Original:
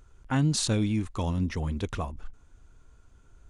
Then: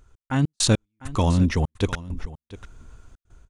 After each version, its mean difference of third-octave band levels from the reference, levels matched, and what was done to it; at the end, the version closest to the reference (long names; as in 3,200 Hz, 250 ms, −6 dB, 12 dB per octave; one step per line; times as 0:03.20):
9.0 dB: automatic gain control gain up to 9 dB
gate pattern "x.x.x..xxx" 100 BPM −60 dB
single-tap delay 700 ms −17.5 dB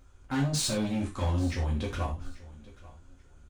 7.0 dB: gain into a clipping stage and back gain 26.5 dB
repeating echo 837 ms, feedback 25%, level −20 dB
reverb whose tail is shaped and stops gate 120 ms falling, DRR −3.5 dB
level −4 dB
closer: second